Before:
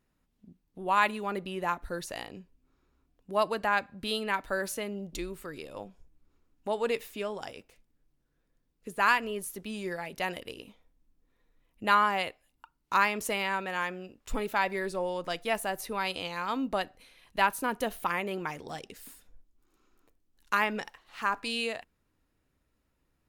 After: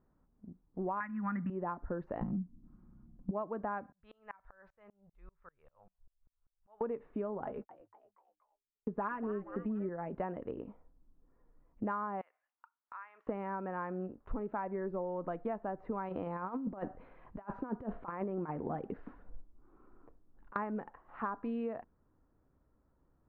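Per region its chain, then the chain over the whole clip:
1–1.5 EQ curve 250 Hz 0 dB, 410 Hz -28 dB, 1900 Hz +14 dB, 4000 Hz -15 dB + three-band squash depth 100%
2.21–3.31 minimum comb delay 5.6 ms + resonant low shelf 320 Hz +11 dB, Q 3
3.92–6.81 passive tone stack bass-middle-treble 10-0-10 + dB-ramp tremolo swelling 5.1 Hz, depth 31 dB
7.45–9.89 gate -56 dBFS, range -39 dB + comb 4.8 ms, depth 68% + frequency-shifting echo 0.236 s, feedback 48%, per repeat +100 Hz, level -16.5 dB
12.21–13.27 Chebyshev high-pass 1800 Hz + compressor 3:1, threshold -48 dBFS
16.09–20.56 negative-ratio compressor -36 dBFS, ratio -0.5 + thinning echo 63 ms, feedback 50%, high-pass 730 Hz, level -23.5 dB
whole clip: LPF 1300 Hz 24 dB/oct; dynamic EQ 230 Hz, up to +6 dB, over -48 dBFS, Q 0.97; compressor 12:1, threshold -37 dBFS; gain +3.5 dB

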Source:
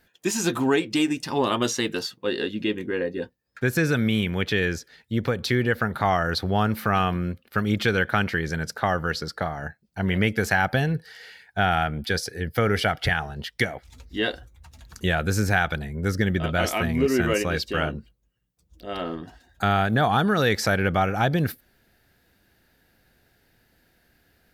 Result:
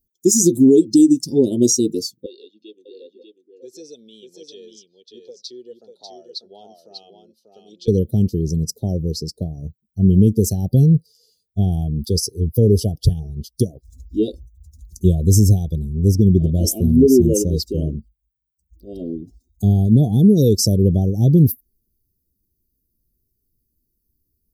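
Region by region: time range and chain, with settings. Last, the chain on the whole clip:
2.26–7.88 Butterworth band-pass 1900 Hz, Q 0.53 + echo 0.593 s -4 dB
whole clip: per-bin expansion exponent 1.5; elliptic band-stop 390–5800 Hz, stop band 60 dB; maximiser +18.5 dB; gain -3 dB

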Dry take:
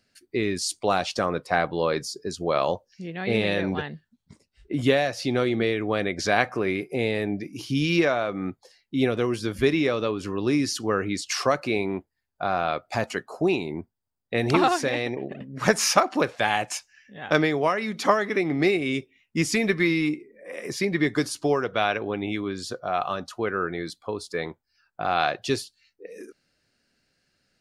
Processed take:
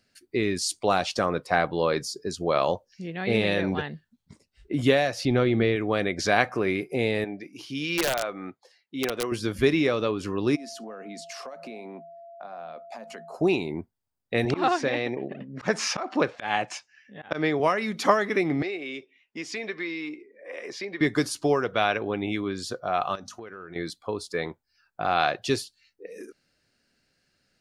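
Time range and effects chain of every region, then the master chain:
5.25–5.76 LPF 3800 Hz + low shelf 110 Hz +11.5 dB
7.24–9.32 HPF 590 Hz 6 dB/oct + high shelf 4900 Hz -9.5 dB + wrapped overs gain 17 dB
10.55–13.33 rippled Chebyshev high-pass 160 Hz, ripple 9 dB + compressor 10:1, threshold -36 dBFS + whine 680 Hz -43 dBFS
14.45–17.6 HPF 120 Hz + auto swell 0.14 s + air absorption 100 m
18.62–21.01 compressor 2:1, threshold -32 dBFS + three-band isolator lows -20 dB, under 290 Hz, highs -22 dB, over 6000 Hz + notch 1300 Hz, Q 25
23.15–23.76 bell 6100 Hz +11.5 dB 0.35 oct + notches 50/100/150/200/250 Hz + compressor 8:1, threshold -37 dBFS
whole clip: dry

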